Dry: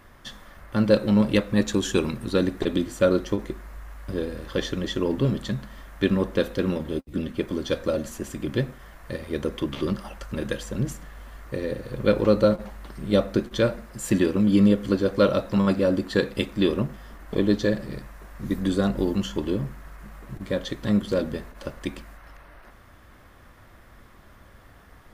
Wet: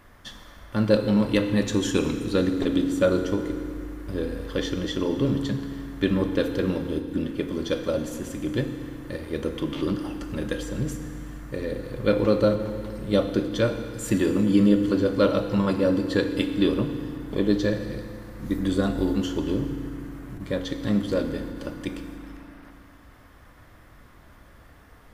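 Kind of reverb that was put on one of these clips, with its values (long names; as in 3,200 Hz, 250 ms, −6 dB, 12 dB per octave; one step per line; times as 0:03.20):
feedback delay network reverb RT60 2.1 s, low-frequency decay 1.5×, high-frequency decay 0.95×, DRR 6.5 dB
level −1.5 dB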